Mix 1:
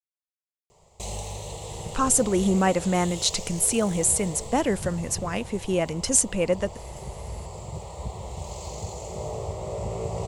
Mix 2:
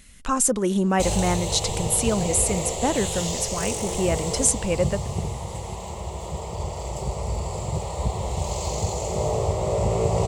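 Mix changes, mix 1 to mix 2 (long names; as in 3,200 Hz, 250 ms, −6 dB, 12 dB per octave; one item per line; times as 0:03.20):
speech: entry −1.70 s
background +8.5 dB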